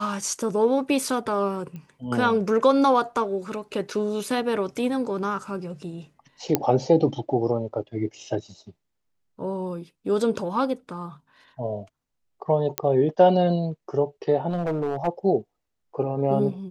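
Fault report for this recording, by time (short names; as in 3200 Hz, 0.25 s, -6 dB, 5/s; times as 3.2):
1.76 pop -27 dBFS
6.55 pop -5 dBFS
12.78 pop -5 dBFS
14.5–15.08 clipped -21 dBFS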